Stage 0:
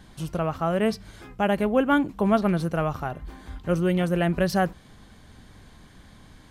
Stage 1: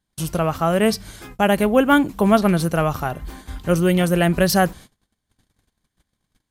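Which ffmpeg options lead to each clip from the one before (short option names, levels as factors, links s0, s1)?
-af "crystalizer=i=2:c=0,agate=range=0.0178:threshold=0.00708:ratio=16:detection=peak,volume=1.88"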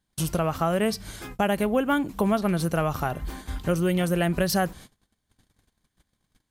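-af "acompressor=threshold=0.0708:ratio=2.5"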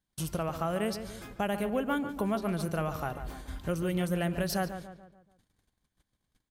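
-filter_complex "[0:a]asplit=2[s0][s1];[s1]adelay=144,lowpass=f=2500:p=1,volume=0.335,asplit=2[s2][s3];[s3]adelay=144,lowpass=f=2500:p=1,volume=0.46,asplit=2[s4][s5];[s5]adelay=144,lowpass=f=2500:p=1,volume=0.46,asplit=2[s6][s7];[s7]adelay=144,lowpass=f=2500:p=1,volume=0.46,asplit=2[s8][s9];[s9]adelay=144,lowpass=f=2500:p=1,volume=0.46[s10];[s0][s2][s4][s6][s8][s10]amix=inputs=6:normalize=0,volume=0.422"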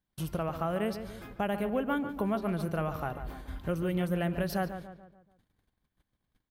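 -af "equalizer=f=7300:w=0.76:g=-10.5"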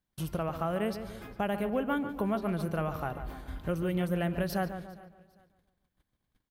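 -af "aecho=1:1:403|806:0.0708|0.0234"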